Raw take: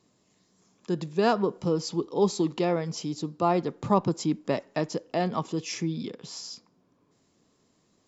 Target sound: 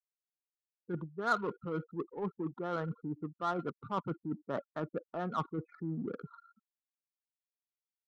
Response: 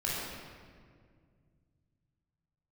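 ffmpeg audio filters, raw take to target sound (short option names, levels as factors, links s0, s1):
-af "areverse,acompressor=threshold=0.02:ratio=12,areverse,lowpass=f=1400:t=q:w=13,afftfilt=real='re*gte(hypot(re,im),0.0141)':imag='im*gte(hypot(re,im),0.0141)':win_size=1024:overlap=0.75,adynamicsmooth=sensitivity=4:basefreq=1000"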